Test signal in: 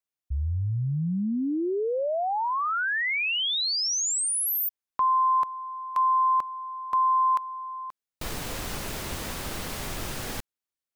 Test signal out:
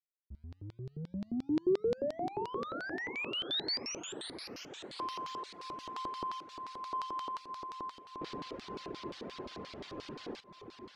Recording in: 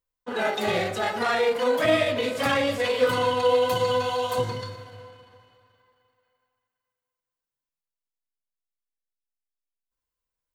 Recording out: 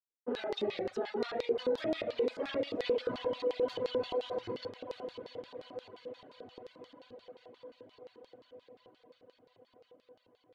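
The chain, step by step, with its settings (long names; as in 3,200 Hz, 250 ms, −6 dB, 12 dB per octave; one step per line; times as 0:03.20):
leveller curve on the samples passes 1
brickwall limiter −17 dBFS
high-shelf EQ 7,700 Hz −3 dB
low-pass that shuts in the quiet parts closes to 2,100 Hz, open at −22 dBFS
bass and treble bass +2 dB, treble −13 dB
on a send: feedback delay with all-pass diffusion 727 ms, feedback 71%, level −9.5 dB
on the sum: reverb reduction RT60 0.93 s
auto-filter band-pass square 5.7 Hz 370–4,400 Hz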